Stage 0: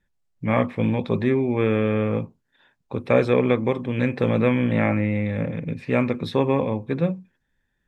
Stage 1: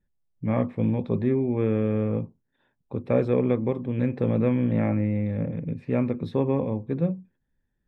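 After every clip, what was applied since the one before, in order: tilt shelf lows +7 dB, about 910 Hz; gain -8 dB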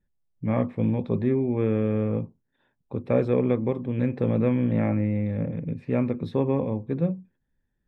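nothing audible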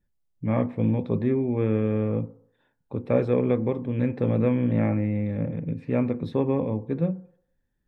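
FDN reverb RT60 0.68 s, low-frequency decay 0.75×, high-frequency decay 0.25×, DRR 14.5 dB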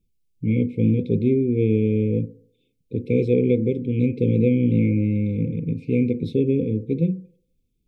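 brick-wall FIR band-stop 520–2100 Hz; gain +4.5 dB

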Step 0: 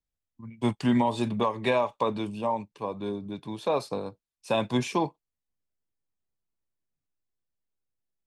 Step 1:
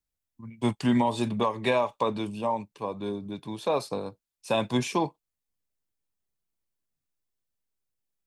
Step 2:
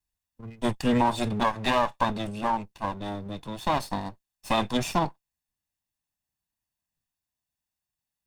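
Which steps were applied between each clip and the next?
high shelf 5900 Hz +5 dB
minimum comb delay 1.1 ms; gain +2.5 dB

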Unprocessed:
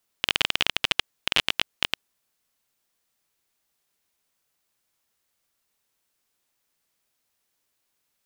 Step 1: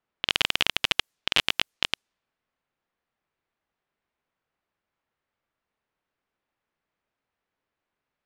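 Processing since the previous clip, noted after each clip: low-pass opened by the level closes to 2000 Hz, open at -26.5 dBFS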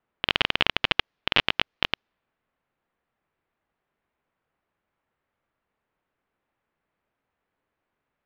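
air absorption 280 m; gain +5.5 dB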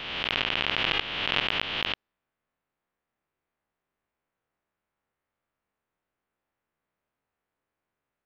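spectral swells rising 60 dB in 1.59 s; gain -7.5 dB

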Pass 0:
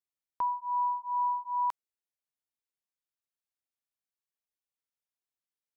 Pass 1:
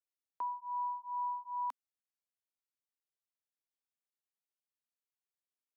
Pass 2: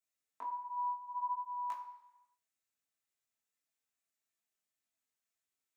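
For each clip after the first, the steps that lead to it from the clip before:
elliptic high-pass 250 Hz; gain -7 dB
chorus 0.62 Hz, delay 18 ms, depth 7.4 ms; reverb RT60 1.0 s, pre-delay 4 ms, DRR -2 dB; gain +4 dB

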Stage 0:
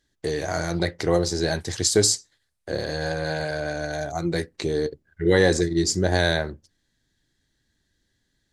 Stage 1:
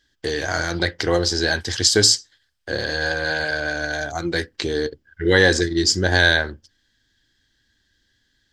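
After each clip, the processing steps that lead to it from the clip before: thirty-one-band EQ 160 Hz -10 dB, 400 Hz -3 dB, 630 Hz -4 dB, 1600 Hz +8 dB, 3150 Hz +9 dB, 5000 Hz +7 dB, 10000 Hz -9 dB; gain +3 dB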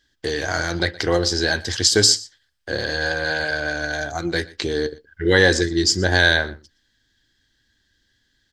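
echo 0.119 s -21 dB

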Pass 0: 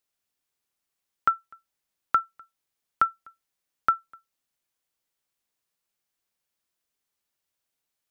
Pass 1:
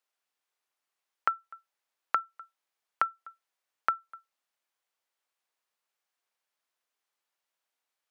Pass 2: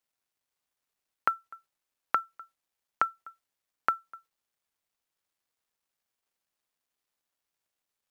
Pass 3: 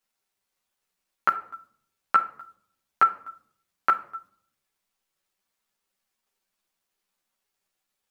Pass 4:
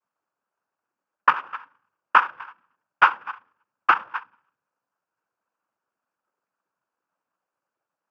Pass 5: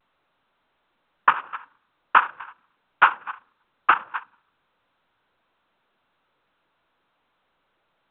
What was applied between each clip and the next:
HPF 780 Hz 12 dB/oct; tilt -3 dB/oct; compressor, threshold -28 dBFS, peak gain reduction 9.5 dB; gain +4 dB
low shelf 350 Hz +10 dB; companded quantiser 8-bit
on a send at -9 dB: reverb RT60 0.60 s, pre-delay 5 ms; on the sum: ensemble effect; gain +7.5 dB
treble ducked by the level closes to 1300 Hz, closed at -24 dBFS; resonant high shelf 1800 Hz -13 dB, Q 3; noise vocoder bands 8; gain +1 dB
A-law 64 kbps 8000 Hz

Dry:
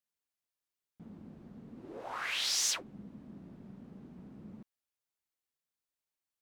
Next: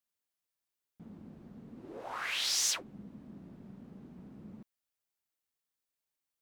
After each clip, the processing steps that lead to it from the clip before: high shelf 11000 Hz +3.5 dB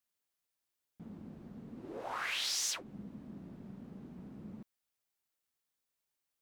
compressor 2.5:1, threshold -36 dBFS, peak gain reduction 6.5 dB; gain +1.5 dB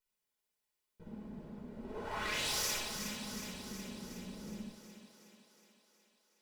minimum comb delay 4.7 ms; thinning echo 0.367 s, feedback 65%, high-pass 270 Hz, level -7.5 dB; reverb RT60 0.55 s, pre-delay 58 ms, DRR 1 dB; gain -3 dB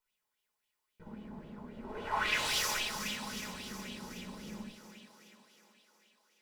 LFO bell 3.7 Hz 880–3200 Hz +12 dB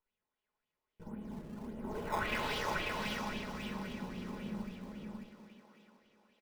tape spacing loss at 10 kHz 28 dB; in parallel at -7 dB: decimation with a swept rate 17×, swing 160% 1.5 Hz; on the sum: echo 0.544 s -3.5 dB

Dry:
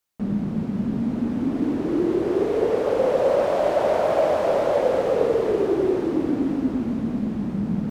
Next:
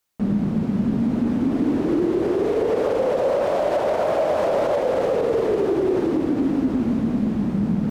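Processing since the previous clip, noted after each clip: limiter -17 dBFS, peak gain reduction 9.5 dB; gain +4 dB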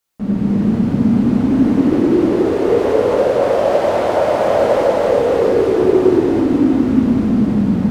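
non-linear reverb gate 0.44 s flat, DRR -7.5 dB; gain -1.5 dB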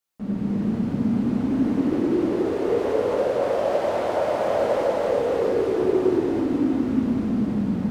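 low shelf 140 Hz -3 dB; gain -8 dB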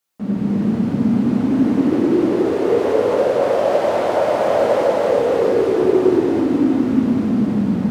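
HPF 93 Hz; gain +6 dB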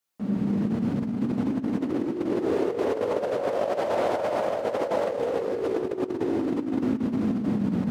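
negative-ratio compressor -18 dBFS, ratio -0.5; gain -7.5 dB

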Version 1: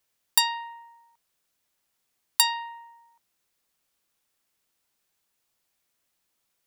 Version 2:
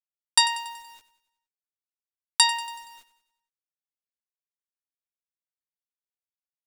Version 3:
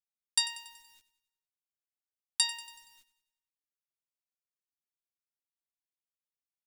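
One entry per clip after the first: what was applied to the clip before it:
elliptic low-pass 10000 Hz, stop band 50 dB; bit-crush 9-bit; feedback echo 94 ms, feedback 51%, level -15 dB; gain +4 dB
bell 810 Hz -14.5 dB 2 oct; gain -7 dB

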